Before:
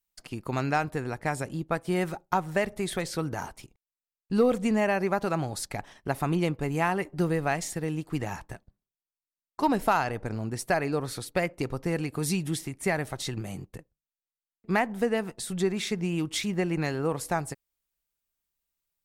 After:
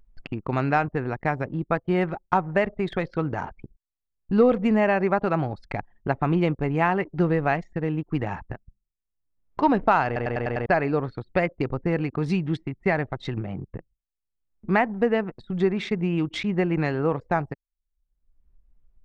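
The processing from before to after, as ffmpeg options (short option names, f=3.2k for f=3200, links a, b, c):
-filter_complex "[0:a]asplit=7[a][b][c][d][e][f][g];[a]atrim=end=10.162[h];[b]atrim=start=10.058:end=10.162[i];[c]atrim=start=10.058:end=10.162[j];[d]atrim=start=10.058:end=10.162[k];[e]atrim=start=10.058:end=10.162[l];[f]atrim=start=10.058:end=10.162[m];[g]atrim=start=10.658[n];[h][i]acrossfade=d=0.004:c1=hsin:c2=hsin[o];[o][j]acrossfade=d=0.004:c1=hsin:c2=hsin[p];[p][k]acrossfade=d=0.004:c1=hsin:c2=hsin[q];[q][l]acrossfade=d=0.004:c1=hsin:c2=hsin[r];[r][m]acrossfade=d=0.004:c1=hsin:c2=hsin[s];[s][n]acrossfade=d=0.004:c1=hsin:c2=hsin,lowpass=2.7k,anlmdn=0.251,acompressor=mode=upward:threshold=-32dB:ratio=2.5,volume=4.5dB"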